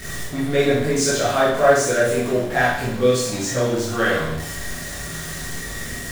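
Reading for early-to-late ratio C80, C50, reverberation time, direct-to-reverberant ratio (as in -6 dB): 5.5 dB, 1.0 dB, 0.75 s, -8.5 dB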